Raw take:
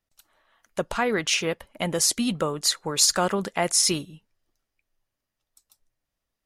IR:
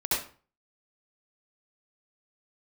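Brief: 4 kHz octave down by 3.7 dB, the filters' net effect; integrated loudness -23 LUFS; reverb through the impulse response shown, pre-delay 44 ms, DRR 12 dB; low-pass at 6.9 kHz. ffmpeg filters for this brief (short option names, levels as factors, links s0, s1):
-filter_complex "[0:a]lowpass=6900,equalizer=f=4000:t=o:g=-4,asplit=2[s0][s1];[1:a]atrim=start_sample=2205,adelay=44[s2];[s1][s2]afir=irnorm=-1:irlink=0,volume=0.0841[s3];[s0][s3]amix=inputs=2:normalize=0,volume=1.41"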